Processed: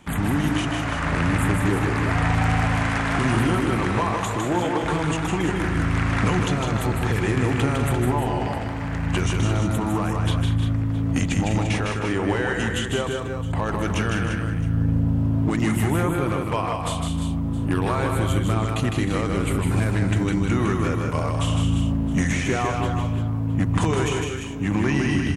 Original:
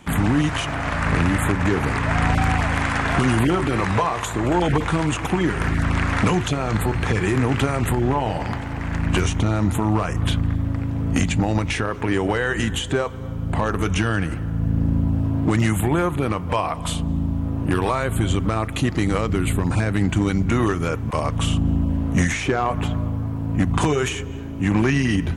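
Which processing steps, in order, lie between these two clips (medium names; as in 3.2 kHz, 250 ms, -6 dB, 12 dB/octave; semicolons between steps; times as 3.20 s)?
4.35–4.82 s: high-pass 76 Hz -> 290 Hz 24 dB/octave; multi-tap echo 156/199/310/346/666 ms -4/-10.5/-12.5/-8.5/-18.5 dB; trim -4 dB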